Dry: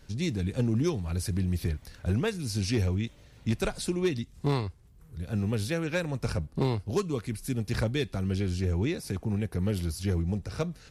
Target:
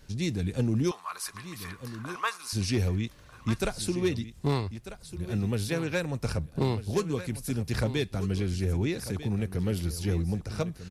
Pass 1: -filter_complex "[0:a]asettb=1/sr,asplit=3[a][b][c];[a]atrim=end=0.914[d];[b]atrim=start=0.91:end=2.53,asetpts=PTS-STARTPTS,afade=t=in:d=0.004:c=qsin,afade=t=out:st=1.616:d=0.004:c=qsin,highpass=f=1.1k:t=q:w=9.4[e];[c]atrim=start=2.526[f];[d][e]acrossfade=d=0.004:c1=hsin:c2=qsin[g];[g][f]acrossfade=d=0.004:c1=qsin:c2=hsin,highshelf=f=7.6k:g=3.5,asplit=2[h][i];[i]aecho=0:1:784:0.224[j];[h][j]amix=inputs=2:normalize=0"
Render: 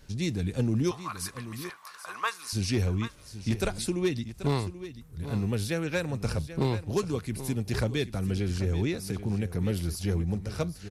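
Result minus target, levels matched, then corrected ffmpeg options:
echo 0.461 s early
-filter_complex "[0:a]asettb=1/sr,asplit=3[a][b][c];[a]atrim=end=0.914[d];[b]atrim=start=0.91:end=2.53,asetpts=PTS-STARTPTS,afade=t=in:d=0.004:c=qsin,afade=t=out:st=1.616:d=0.004:c=qsin,highpass=f=1.1k:t=q:w=9.4[e];[c]atrim=start=2.526[f];[d][e]acrossfade=d=0.004:c1=hsin:c2=qsin[g];[g][f]acrossfade=d=0.004:c1=qsin:c2=hsin,highshelf=f=7.6k:g=3.5,asplit=2[h][i];[i]aecho=0:1:1245:0.224[j];[h][j]amix=inputs=2:normalize=0"

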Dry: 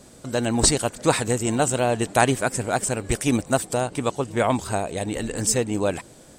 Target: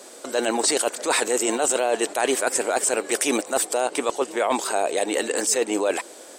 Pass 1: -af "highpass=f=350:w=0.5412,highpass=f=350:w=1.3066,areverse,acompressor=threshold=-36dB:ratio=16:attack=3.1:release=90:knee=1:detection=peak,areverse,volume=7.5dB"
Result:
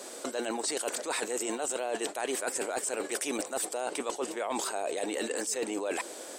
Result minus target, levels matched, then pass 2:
compressor: peak gain reduction +11 dB
-af "highpass=f=350:w=0.5412,highpass=f=350:w=1.3066,areverse,acompressor=threshold=-24dB:ratio=16:attack=3.1:release=90:knee=1:detection=peak,areverse,volume=7.5dB"

